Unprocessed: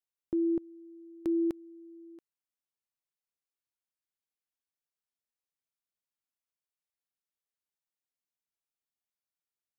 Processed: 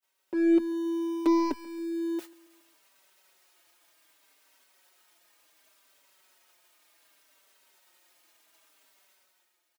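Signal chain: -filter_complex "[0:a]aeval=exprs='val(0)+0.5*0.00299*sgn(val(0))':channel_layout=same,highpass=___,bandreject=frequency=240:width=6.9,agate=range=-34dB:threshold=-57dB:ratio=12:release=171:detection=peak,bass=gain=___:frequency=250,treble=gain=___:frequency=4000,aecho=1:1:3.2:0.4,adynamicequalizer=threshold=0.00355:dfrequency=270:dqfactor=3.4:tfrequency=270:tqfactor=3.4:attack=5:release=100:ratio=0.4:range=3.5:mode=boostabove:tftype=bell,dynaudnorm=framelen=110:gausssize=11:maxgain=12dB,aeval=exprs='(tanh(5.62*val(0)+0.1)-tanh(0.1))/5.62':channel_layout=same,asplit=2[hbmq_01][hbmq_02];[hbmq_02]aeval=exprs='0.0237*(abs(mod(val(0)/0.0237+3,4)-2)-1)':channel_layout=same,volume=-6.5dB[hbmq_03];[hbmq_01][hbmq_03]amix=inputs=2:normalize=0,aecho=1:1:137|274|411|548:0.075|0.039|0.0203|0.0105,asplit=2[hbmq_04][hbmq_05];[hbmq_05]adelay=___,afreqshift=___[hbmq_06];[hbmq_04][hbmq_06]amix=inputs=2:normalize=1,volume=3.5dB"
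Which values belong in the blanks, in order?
60, -15, -5, 4.7, -0.67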